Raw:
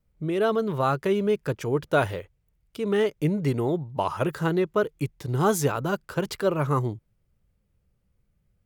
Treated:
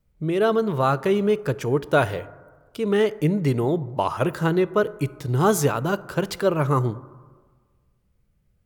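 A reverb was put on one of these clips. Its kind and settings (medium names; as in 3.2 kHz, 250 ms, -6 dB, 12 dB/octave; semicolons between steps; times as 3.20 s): plate-style reverb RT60 1.5 s, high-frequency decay 0.3×, DRR 17 dB; trim +3 dB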